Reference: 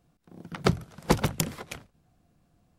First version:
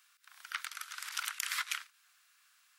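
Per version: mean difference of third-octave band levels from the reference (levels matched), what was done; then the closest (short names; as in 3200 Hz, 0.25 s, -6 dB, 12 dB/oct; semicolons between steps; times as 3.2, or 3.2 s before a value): 22.5 dB: negative-ratio compressor -33 dBFS, ratio -1; limiter -24.5 dBFS, peak gain reduction 11 dB; steep high-pass 1300 Hz 36 dB/oct; gain +7.5 dB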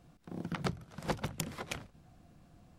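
6.5 dB: high shelf 9800 Hz -7.5 dB; notch 430 Hz, Q 14; compressor 5:1, threshold -41 dBFS, peak gain reduction 22 dB; gain +6.5 dB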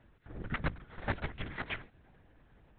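11.0 dB: bell 1800 Hz +10 dB 0.71 oct; compressor 10:1, threshold -35 dBFS, peak gain reduction 20.5 dB; LPC vocoder at 8 kHz whisper; gain +4 dB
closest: second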